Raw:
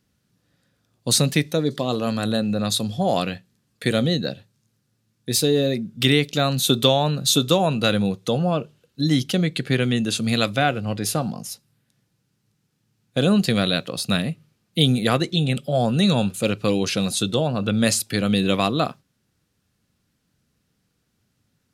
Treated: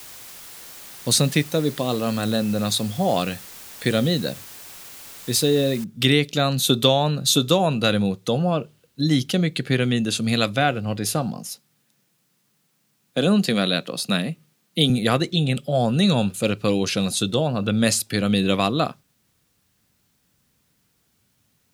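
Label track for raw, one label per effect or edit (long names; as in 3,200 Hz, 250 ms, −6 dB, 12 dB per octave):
5.840000	5.840000	noise floor change −41 dB −69 dB
11.380000	14.900000	high-pass filter 150 Hz 24 dB per octave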